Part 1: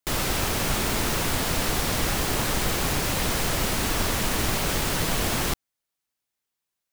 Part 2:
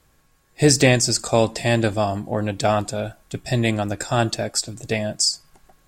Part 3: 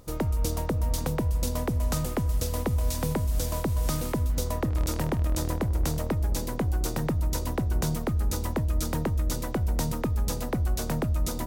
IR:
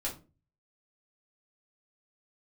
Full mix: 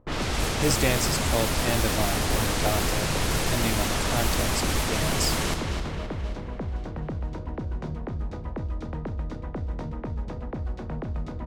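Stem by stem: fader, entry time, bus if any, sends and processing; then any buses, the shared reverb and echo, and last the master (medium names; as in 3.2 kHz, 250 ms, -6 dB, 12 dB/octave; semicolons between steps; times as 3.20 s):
-2.5 dB, 0.00 s, no send, echo send -6 dB, none
-9.5 dB, 0.00 s, no send, no echo send, none
-5.5 dB, 0.00 s, no send, echo send -6.5 dB, treble shelf 3.6 kHz -9 dB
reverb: none
echo: feedback delay 262 ms, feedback 60%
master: level-controlled noise filter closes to 1.1 kHz, open at -19.5 dBFS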